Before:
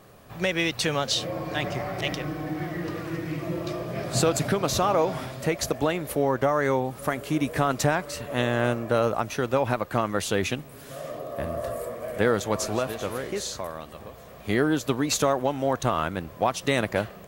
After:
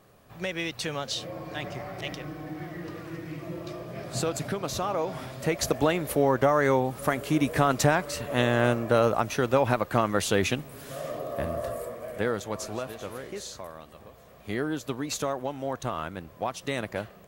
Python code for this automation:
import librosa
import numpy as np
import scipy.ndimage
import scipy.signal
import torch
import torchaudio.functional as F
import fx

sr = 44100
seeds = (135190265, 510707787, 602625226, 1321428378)

y = fx.gain(x, sr, db=fx.line((5.0, -6.5), (5.71, 1.0), (11.31, 1.0), (12.47, -7.0)))